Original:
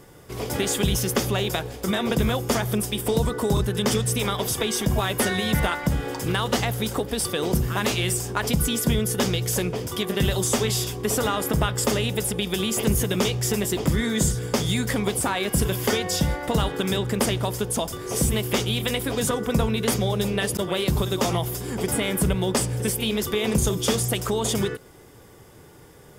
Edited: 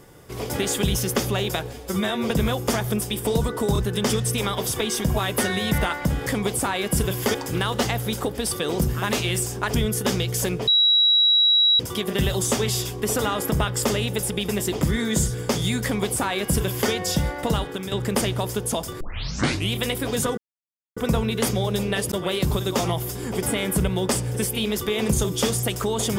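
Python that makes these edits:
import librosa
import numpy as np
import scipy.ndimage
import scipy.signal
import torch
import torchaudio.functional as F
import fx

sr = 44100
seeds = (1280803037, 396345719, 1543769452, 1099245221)

y = fx.edit(x, sr, fx.stretch_span(start_s=1.73, length_s=0.37, factor=1.5),
    fx.cut(start_s=8.48, length_s=0.4),
    fx.insert_tone(at_s=9.81, length_s=1.12, hz=3880.0, db=-14.0),
    fx.cut(start_s=12.5, length_s=1.03),
    fx.duplicate(start_s=14.88, length_s=1.08, to_s=6.08),
    fx.fade_out_to(start_s=16.53, length_s=0.43, floor_db=-9.5),
    fx.tape_start(start_s=18.05, length_s=0.73),
    fx.insert_silence(at_s=19.42, length_s=0.59), tone=tone)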